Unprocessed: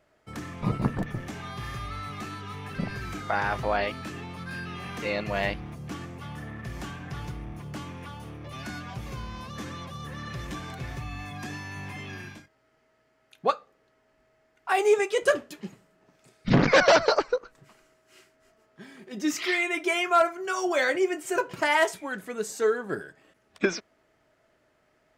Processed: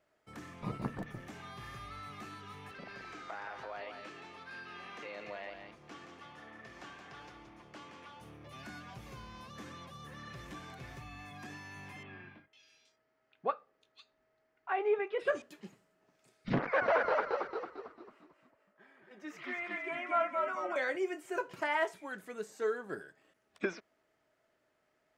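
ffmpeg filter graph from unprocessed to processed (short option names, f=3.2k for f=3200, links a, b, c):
-filter_complex "[0:a]asettb=1/sr,asplit=3[a][b][c];[a]atrim=end=2.714[d];[b]atrim=start=2.71:end=8.21,asetpts=PTS-STARTPTS,afade=t=in:d=0.004:c=qsin,afade=t=out:st=5.496:d=0.004:c=qsin,acrossover=split=290 7000:gain=0.224 1 0.141[e][f][g];[e][f][g]amix=inputs=3:normalize=0,acompressor=threshold=-33dB:ratio=3:attack=3.2:release=140:knee=1:detection=peak,aecho=1:1:173:0.447,atrim=end_sample=242550[h];[c]atrim=start=8.206[i];[d][h]acrossfade=d=0.004:c1=hsin:c2=qsin[j];[j][i]acrossfade=d=0.004:c1=qsin:c2=hsin,asettb=1/sr,asplit=3[k][l][m];[k]atrim=end=12.034[n];[l]atrim=start=12.03:end=15.42,asetpts=PTS-STARTPTS,afade=t=in:d=0.004:c=qsin,afade=t=out:st=3.386:d=0.004:c=qsin,lowpass=5k,acrossover=split=3200[o][p];[p]adelay=500[q];[o][q]amix=inputs=2:normalize=0,atrim=end_sample=149499[r];[m]atrim=start=15.416[s];[n][r]acrossfade=d=0.004:c1=hsin:c2=qsin[t];[t][s]acrossfade=d=0.004:c1=qsin:c2=hsin,asettb=1/sr,asplit=3[u][v][w];[u]atrim=end=16.594[x];[v]atrim=start=16.59:end=20.76,asetpts=PTS-STARTPTS,afade=t=in:d=0.004:c=qsin,afade=t=out:st=4.166:d=0.004:c=qsin,acrossover=split=460 2300:gain=0.2 1 0.112[y][z][aa];[y][z][aa]amix=inputs=3:normalize=0,asplit=7[ab][ac][ad][ae][af][ag][ah];[ac]adelay=224,afreqshift=-50,volume=-3dB[ai];[ad]adelay=448,afreqshift=-100,volume=-9.9dB[aj];[ae]adelay=672,afreqshift=-150,volume=-16.9dB[ak];[af]adelay=896,afreqshift=-200,volume=-23.8dB[al];[ag]adelay=1120,afreqshift=-250,volume=-30.7dB[am];[ah]adelay=1344,afreqshift=-300,volume=-37.7dB[an];[ab][ai][aj][ak][al][am][an]amix=inputs=7:normalize=0,atrim=end_sample=183897[ao];[w]atrim=start=20.756[ap];[x][ao]acrossfade=d=0.004:c1=hsin:c2=qsin[aq];[aq][ap]acrossfade=d=0.004:c1=qsin:c2=hsin,acrossover=split=2900[ar][as];[as]acompressor=threshold=-47dB:ratio=4:attack=1:release=60[at];[ar][at]amix=inputs=2:normalize=0,lowshelf=f=150:g=-8,volume=-8.5dB"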